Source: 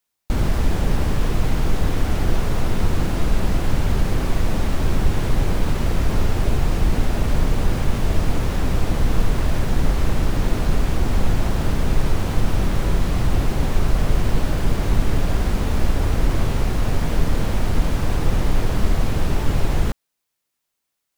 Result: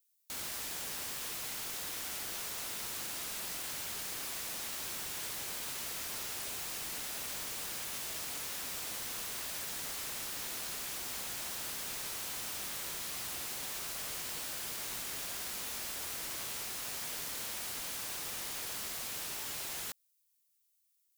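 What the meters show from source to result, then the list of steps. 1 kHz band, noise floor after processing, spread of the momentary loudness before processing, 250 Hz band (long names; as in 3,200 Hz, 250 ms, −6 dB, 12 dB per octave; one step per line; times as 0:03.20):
−17.0 dB, −75 dBFS, 1 LU, −29.5 dB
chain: first difference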